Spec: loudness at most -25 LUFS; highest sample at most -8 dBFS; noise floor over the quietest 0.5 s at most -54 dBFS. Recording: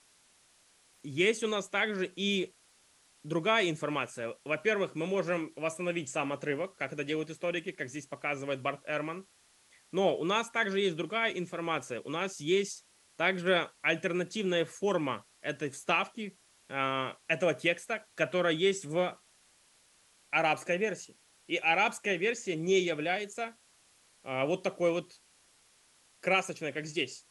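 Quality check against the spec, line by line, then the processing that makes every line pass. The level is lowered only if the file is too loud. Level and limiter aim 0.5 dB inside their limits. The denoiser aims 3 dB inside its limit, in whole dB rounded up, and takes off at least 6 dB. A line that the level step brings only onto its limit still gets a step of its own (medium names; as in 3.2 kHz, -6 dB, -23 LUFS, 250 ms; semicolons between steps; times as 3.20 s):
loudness -31.5 LUFS: pass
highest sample -12.5 dBFS: pass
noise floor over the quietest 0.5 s -65 dBFS: pass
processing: none needed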